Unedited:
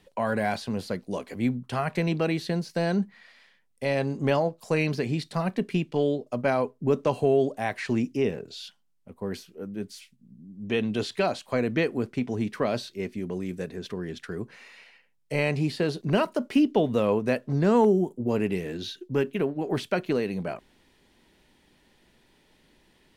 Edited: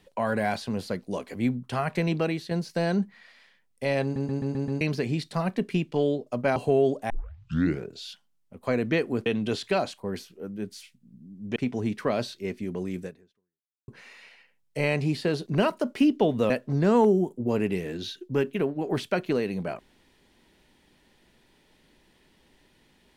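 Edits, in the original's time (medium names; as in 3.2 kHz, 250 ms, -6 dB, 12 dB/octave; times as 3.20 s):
2.20–2.51 s: fade out, to -7 dB
4.03 s: stutter in place 0.13 s, 6 plays
6.56–7.11 s: delete
7.65 s: tape start 0.79 s
9.18–10.74 s: swap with 11.48–12.11 s
13.58–14.43 s: fade out exponential
17.05–17.30 s: delete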